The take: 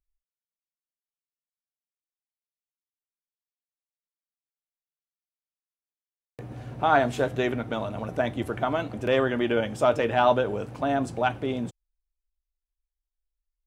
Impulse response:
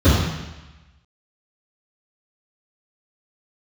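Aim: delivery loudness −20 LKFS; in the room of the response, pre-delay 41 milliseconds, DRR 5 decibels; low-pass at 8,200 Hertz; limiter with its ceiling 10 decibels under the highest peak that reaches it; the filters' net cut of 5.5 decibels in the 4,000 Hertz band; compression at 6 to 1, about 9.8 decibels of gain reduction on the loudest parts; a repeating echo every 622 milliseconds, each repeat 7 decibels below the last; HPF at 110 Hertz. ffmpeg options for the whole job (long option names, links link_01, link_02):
-filter_complex "[0:a]highpass=110,lowpass=8200,equalizer=frequency=4000:width_type=o:gain=-7.5,acompressor=threshold=-26dB:ratio=6,alimiter=level_in=1.5dB:limit=-24dB:level=0:latency=1,volume=-1.5dB,aecho=1:1:622|1244|1866|2488|3110:0.447|0.201|0.0905|0.0407|0.0183,asplit=2[link_01][link_02];[1:a]atrim=start_sample=2205,adelay=41[link_03];[link_02][link_03]afir=irnorm=-1:irlink=0,volume=-27.5dB[link_04];[link_01][link_04]amix=inputs=2:normalize=0,volume=9.5dB"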